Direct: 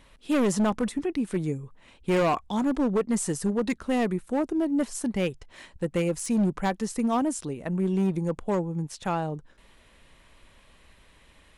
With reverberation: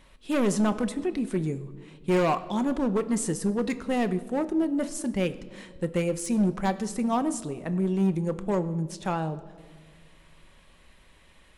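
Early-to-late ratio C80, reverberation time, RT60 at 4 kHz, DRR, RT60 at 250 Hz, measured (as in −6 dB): 16.5 dB, 1.6 s, 1.2 s, 10.0 dB, 2.0 s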